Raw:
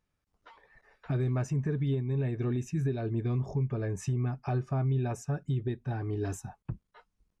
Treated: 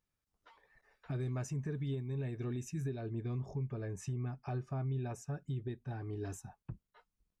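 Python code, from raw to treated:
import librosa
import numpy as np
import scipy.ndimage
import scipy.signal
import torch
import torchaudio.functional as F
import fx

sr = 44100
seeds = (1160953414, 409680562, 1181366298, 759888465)

y = fx.high_shelf(x, sr, hz=4500.0, db=fx.steps((0.0, 6.5), (1.19, 11.0), (2.88, 3.0)))
y = y * 10.0 ** (-8.0 / 20.0)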